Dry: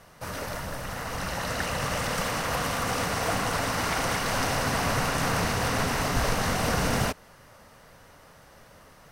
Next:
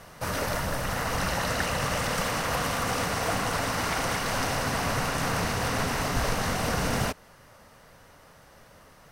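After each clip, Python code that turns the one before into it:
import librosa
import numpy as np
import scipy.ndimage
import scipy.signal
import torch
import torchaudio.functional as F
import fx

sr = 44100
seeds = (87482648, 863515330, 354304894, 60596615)

y = fx.rider(x, sr, range_db=5, speed_s=0.5)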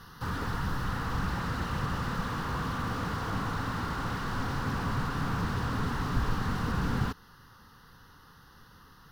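y = fx.fixed_phaser(x, sr, hz=2300.0, stages=6)
y = fx.slew_limit(y, sr, full_power_hz=23.0)
y = F.gain(torch.from_numpy(y), 1.0).numpy()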